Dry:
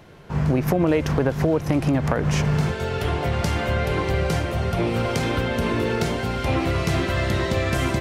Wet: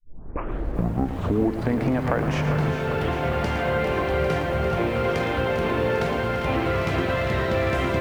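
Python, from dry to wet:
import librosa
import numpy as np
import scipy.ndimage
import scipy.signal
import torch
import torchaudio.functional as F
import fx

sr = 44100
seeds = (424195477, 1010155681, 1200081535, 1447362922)

y = fx.tape_start_head(x, sr, length_s=2.06)
y = fx.bass_treble(y, sr, bass_db=-6, treble_db=-14)
y = y + 10.0 ** (-10.0 / 20.0) * np.pad(y, (int(113 * sr / 1000.0), 0))[:len(y)]
y = fx.echo_crushed(y, sr, ms=400, feedback_pct=80, bits=8, wet_db=-9.5)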